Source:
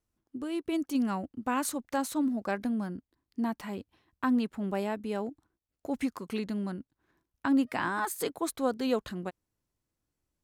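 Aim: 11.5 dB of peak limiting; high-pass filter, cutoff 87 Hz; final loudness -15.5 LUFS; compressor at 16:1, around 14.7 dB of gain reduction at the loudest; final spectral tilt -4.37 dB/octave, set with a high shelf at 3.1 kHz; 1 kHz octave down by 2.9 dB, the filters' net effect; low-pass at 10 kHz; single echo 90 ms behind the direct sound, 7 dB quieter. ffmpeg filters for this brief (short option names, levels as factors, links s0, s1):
-af "highpass=87,lowpass=10000,equalizer=f=1000:t=o:g=-4.5,highshelf=f=3100:g=8.5,acompressor=threshold=0.0141:ratio=16,alimiter=level_in=3.16:limit=0.0631:level=0:latency=1,volume=0.316,aecho=1:1:90:0.447,volume=23.7"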